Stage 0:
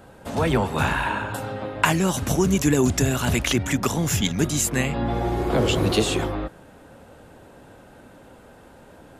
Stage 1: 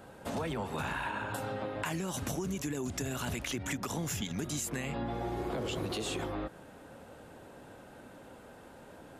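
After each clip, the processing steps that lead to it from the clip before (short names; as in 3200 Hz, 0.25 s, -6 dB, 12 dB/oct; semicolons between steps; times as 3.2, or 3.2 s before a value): low shelf 82 Hz -7.5 dB; limiter -15 dBFS, peak gain reduction 11 dB; compressor, threshold -29 dBFS, peak gain reduction 9.5 dB; gain -3.5 dB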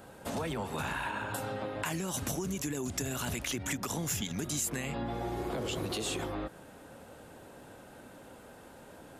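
high shelf 5400 Hz +6 dB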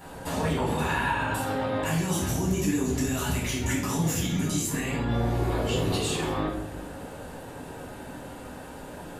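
limiter -30 dBFS, peak gain reduction 11 dB; reverb RT60 0.90 s, pre-delay 4 ms, DRR -6 dB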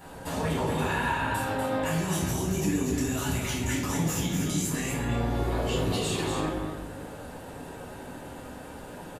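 echo 0.243 s -6 dB; gain -2 dB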